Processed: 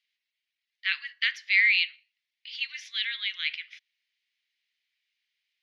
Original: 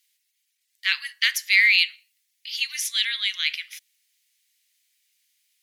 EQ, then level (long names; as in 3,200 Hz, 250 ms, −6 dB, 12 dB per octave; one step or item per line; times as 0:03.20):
high-pass filter 1,400 Hz 12 dB per octave
low-pass filter 7,600 Hz 12 dB per octave
high-frequency loss of the air 290 metres
0.0 dB